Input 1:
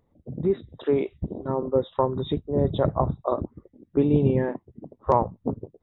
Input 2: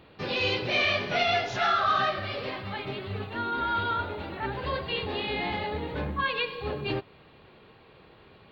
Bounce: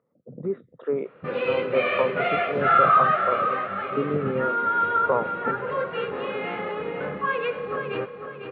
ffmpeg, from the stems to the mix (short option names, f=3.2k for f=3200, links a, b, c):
-filter_complex "[0:a]volume=-5.5dB[a];[1:a]adelay=1050,volume=0dB,asplit=2[b][c];[c]volume=-7.5dB,aecho=0:1:500|1000|1500|2000|2500:1|0.37|0.137|0.0507|0.0187[d];[a][b][d]amix=inputs=3:normalize=0,highpass=f=140:w=0.5412,highpass=f=140:w=1.3066,equalizer=f=310:t=q:w=4:g=-4,equalizer=f=500:t=q:w=4:g=9,equalizer=f=840:t=q:w=4:g=-4,equalizer=f=1.3k:t=q:w=4:g=10,lowpass=f=2.4k:w=0.5412,lowpass=f=2.4k:w=1.3066"